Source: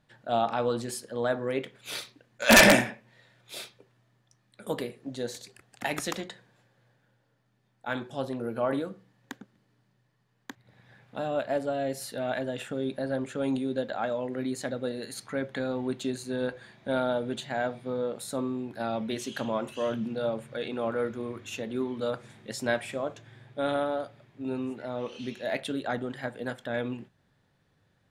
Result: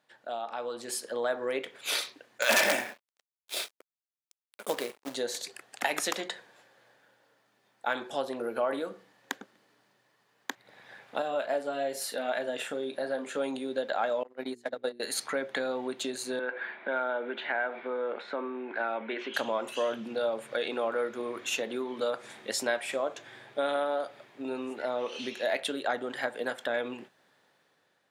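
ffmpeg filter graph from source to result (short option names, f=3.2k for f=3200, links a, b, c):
-filter_complex "[0:a]asettb=1/sr,asplit=3[a][b][c];[a]atrim=end=2.424[d];[b]atrim=start=2.42:end=5.15,asetpts=PTS-STARTPTS,afade=t=in:d=0.004:c=qsin,afade=t=out:st=2.726:d=0.004:c=qsin,highpass=f=41:w=0.5412,highpass=f=41:w=1.3066,aeval=exprs='sgn(val(0))*max(abs(val(0))-0.00316,0)':c=same,acrusher=bits=3:mode=log:mix=0:aa=0.000001[e];[c]atrim=start=5.146[f];[d][e]acrossfade=d=0.004:c1=hsin:c2=qsin[g];[g][f]acrossfade=d=0.004:c1=qsin:c2=hsin,asettb=1/sr,asplit=3[h][i][j];[h]atrim=end=11.224[k];[i]atrim=start=11.22:end=13.37,asetpts=PTS-STARTPTS,afade=t=in:d=0.004:c=qsin,afade=t=out:st=2.146:d=0.004:c=qsin,asplit=2[l][m];[m]adelay=35,volume=-11dB[n];[l][n]amix=inputs=2:normalize=0,atrim=end_sample=94815,flanger=delay=3.9:depth=4.1:regen=-68:speed=1:shape=sinusoidal[o];[j]atrim=start=13.366[p];[k][o]acrossfade=d=0.004:c1=hsin:c2=qsin[q];[q][p]acrossfade=d=0.004:c1=qsin:c2=hsin,asettb=1/sr,asplit=3[r][s][t];[r]atrim=end=14.234[u];[s]atrim=start=14.23:end=15,asetpts=PTS-STARTPTS,afade=t=in:d=0.004:c=qsin,afade=t=out:st=0.766:d=0.004:c=qsin,agate=range=-30dB:threshold=-31dB:ratio=16:release=100:detection=peak,bandreject=f=60:t=h:w=6,bandreject=f=120:t=h:w=6,bandreject=f=180:t=h:w=6,bandreject=f=240:t=h:w=6,bandreject=f=300:t=h:w=6,bandreject=f=360:t=h:w=6,bandreject=f=420:t=h:w=6[v];[t]atrim=start=14.996[w];[u][v]acrossfade=d=0.004:c1=hsin:c2=qsin[x];[x][w]acrossfade=d=0.004:c1=qsin:c2=hsin,asettb=1/sr,asplit=3[y][z][aa];[y]atrim=end=16.394[ab];[z]atrim=start=16.39:end=19.34,asetpts=PTS-STARTPTS,afade=t=in:d=0.004:c=qsin,afade=t=out:st=2.946:d=0.004:c=qsin,acompressor=threshold=-39dB:ratio=2:attack=3.2:release=140:knee=1:detection=peak,highpass=f=200:w=0.5412,highpass=f=200:w=1.3066,equalizer=f=370:t=q:w=4:g=3,equalizer=f=930:t=q:w=4:g=4,equalizer=f=1.5k:t=q:w=4:g=9,equalizer=f=2.2k:t=q:w=4:g=7,lowpass=f=3k:w=0.5412,lowpass=f=3k:w=1.3066[ac];[aa]atrim=start=19.336[ad];[ab][ac]acrossfade=d=0.004:c1=hsin:c2=qsin[ae];[ae][ad]acrossfade=d=0.004:c1=qsin:c2=hsin,acompressor=threshold=-35dB:ratio=3,highpass=420,dynaudnorm=f=270:g=7:m=8.5dB"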